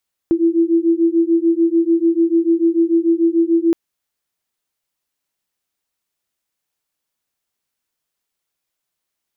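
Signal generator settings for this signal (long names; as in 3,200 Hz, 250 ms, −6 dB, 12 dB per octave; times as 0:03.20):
two tones that beat 330 Hz, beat 6.8 Hz, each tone −15 dBFS 3.42 s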